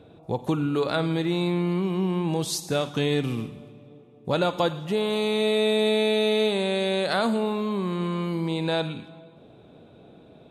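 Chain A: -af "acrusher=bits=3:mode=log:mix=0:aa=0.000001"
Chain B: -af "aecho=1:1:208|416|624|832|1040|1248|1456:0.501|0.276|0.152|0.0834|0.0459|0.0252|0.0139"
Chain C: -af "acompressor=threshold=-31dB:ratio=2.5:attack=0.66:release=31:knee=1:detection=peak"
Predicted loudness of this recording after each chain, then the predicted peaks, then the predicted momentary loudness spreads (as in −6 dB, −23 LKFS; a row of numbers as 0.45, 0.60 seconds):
−25.0, −24.5, −32.5 LKFS; −11.5, −10.0, −21.5 dBFS; 8, 11, 19 LU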